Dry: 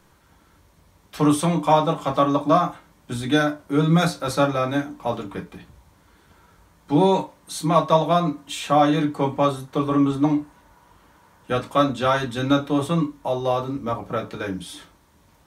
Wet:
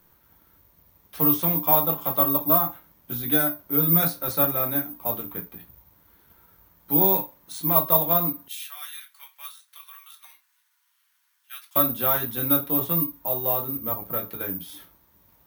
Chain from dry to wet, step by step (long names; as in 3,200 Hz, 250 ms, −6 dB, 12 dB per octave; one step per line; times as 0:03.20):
0:08.48–0:11.76: Bessel high-pass filter 2,500 Hz, order 4
bad sample-rate conversion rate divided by 3×, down filtered, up zero stuff
level −7 dB